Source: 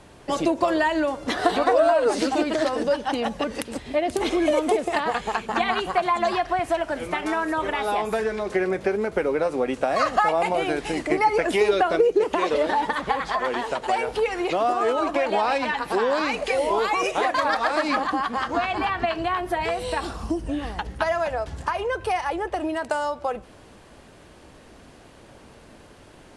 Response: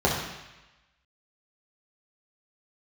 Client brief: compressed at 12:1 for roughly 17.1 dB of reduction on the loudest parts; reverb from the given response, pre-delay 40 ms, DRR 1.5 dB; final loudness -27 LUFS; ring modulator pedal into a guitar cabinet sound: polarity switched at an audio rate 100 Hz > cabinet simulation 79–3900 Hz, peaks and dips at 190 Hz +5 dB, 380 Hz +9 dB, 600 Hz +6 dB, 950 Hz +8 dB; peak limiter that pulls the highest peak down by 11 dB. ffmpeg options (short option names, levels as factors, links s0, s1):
-filter_complex "[0:a]acompressor=threshold=0.0251:ratio=12,alimiter=level_in=1.68:limit=0.0631:level=0:latency=1,volume=0.596,asplit=2[s0][s1];[1:a]atrim=start_sample=2205,adelay=40[s2];[s1][s2]afir=irnorm=-1:irlink=0,volume=0.126[s3];[s0][s3]amix=inputs=2:normalize=0,aeval=exprs='val(0)*sgn(sin(2*PI*100*n/s))':c=same,highpass=79,equalizer=f=190:t=q:w=4:g=5,equalizer=f=380:t=q:w=4:g=9,equalizer=f=600:t=q:w=4:g=6,equalizer=f=950:t=q:w=4:g=8,lowpass=f=3900:w=0.5412,lowpass=f=3900:w=1.3066,volume=1.33"